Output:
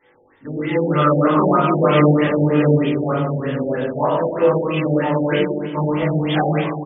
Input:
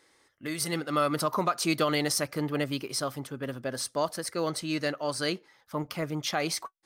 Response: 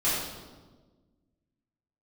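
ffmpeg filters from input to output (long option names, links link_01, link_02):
-filter_complex "[0:a]asplit=2[link_01][link_02];[link_02]adelay=20,volume=-5.5dB[link_03];[link_01][link_03]amix=inputs=2:normalize=0[link_04];[1:a]atrim=start_sample=2205,asetrate=33075,aresample=44100[link_05];[link_04][link_05]afir=irnorm=-1:irlink=0,afftfilt=real='re*lt(b*sr/1024,840*pow(3700/840,0.5+0.5*sin(2*PI*3.2*pts/sr)))':imag='im*lt(b*sr/1024,840*pow(3700/840,0.5+0.5*sin(2*PI*3.2*pts/sr)))':win_size=1024:overlap=0.75,volume=-2dB"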